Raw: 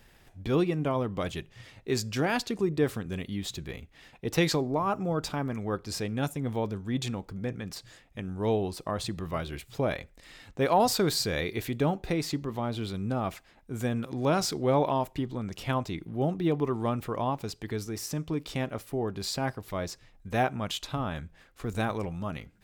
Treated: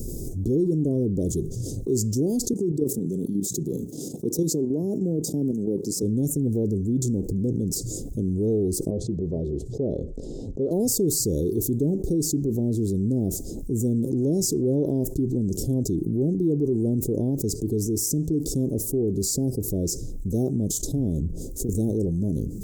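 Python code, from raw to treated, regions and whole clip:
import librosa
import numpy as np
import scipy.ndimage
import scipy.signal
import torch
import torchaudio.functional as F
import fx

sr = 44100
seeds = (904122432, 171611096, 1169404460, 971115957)

y = fx.chain(x, sr, fx.highpass(hz=140.0, slope=24),
    fx.level_steps(step_db=11), at=(2.53, 6.03))
y = fx.chain(y, sr, fx.lowpass(hz=1800.0, slope=12),
    fx.low_shelf(hz=340.0, db=-10.5),
    fx.notch(hz=310.0, q=7.4), at=(8.9, 10.71))
y = fx.chain(y, sr, fx.over_compress(threshold_db=-38.0, ratio=-1.0),
    fx.band_widen(depth_pct=70), at=(21.2, 21.69))
y = scipy.signal.sosfilt(scipy.signal.ellip(3, 1.0, 60, [410.0, 6600.0], 'bandstop', fs=sr, output='sos'), y)
y = fx.peak_eq(y, sr, hz=310.0, db=3.5, octaves=1.3)
y = fx.env_flatten(y, sr, amount_pct=70)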